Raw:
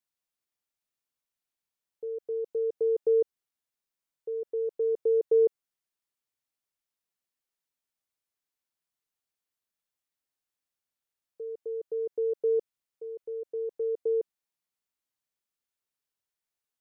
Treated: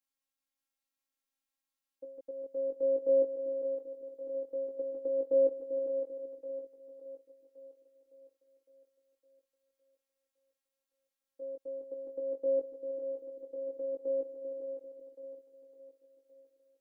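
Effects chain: chorus 0.14 Hz, delay 16 ms, depth 4.2 ms; split-band echo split 450 Hz, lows 0.392 s, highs 0.56 s, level -6.5 dB; robotiser 270 Hz; gain +3 dB

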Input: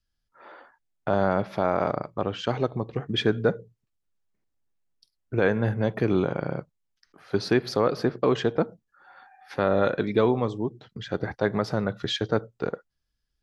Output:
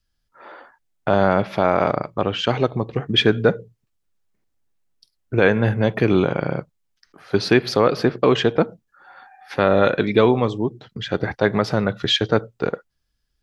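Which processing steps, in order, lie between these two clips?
dynamic EQ 2700 Hz, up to +6 dB, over -48 dBFS, Q 1.4; gain +6 dB

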